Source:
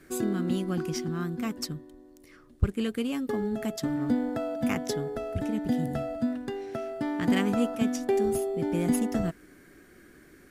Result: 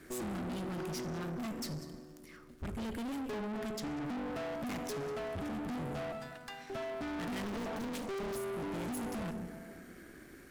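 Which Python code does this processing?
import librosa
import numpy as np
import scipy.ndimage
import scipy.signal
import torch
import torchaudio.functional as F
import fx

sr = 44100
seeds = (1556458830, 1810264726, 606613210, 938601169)

y = fx.dmg_crackle(x, sr, seeds[0], per_s=290.0, level_db=-57.0)
y = fx.high_shelf(y, sr, hz=10000.0, db=-9.0, at=(3.58, 4.05))
y = fx.highpass(y, sr, hz=850.0, slope=24, at=(6.12, 6.7))
y = y + 10.0 ** (-21.5 / 20.0) * np.pad(y, (int(191 * sr / 1000.0), 0))[:len(y)]
y = fx.rev_plate(y, sr, seeds[1], rt60_s=1.9, hf_ratio=0.6, predelay_ms=0, drr_db=12.5)
y = fx.tube_stage(y, sr, drive_db=40.0, bias=0.6)
y = fx.doppler_dist(y, sr, depth_ms=0.83, at=(7.43, 8.36))
y = y * librosa.db_to_amplitude(3.0)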